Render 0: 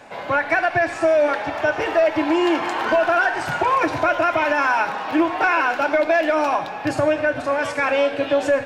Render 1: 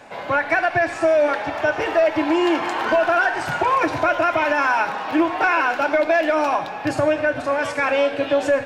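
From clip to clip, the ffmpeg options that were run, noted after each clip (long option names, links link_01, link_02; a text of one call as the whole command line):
ffmpeg -i in.wav -af anull out.wav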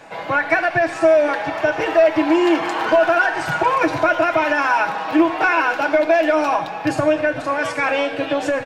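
ffmpeg -i in.wav -af "aecho=1:1:6.2:0.43,volume=1dB" out.wav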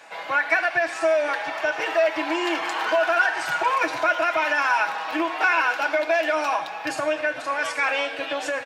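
ffmpeg -i in.wav -af "highpass=frequency=1300:poles=1" out.wav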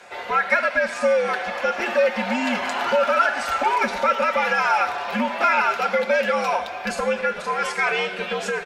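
ffmpeg -i in.wav -af "afreqshift=-93,volume=1.5dB" out.wav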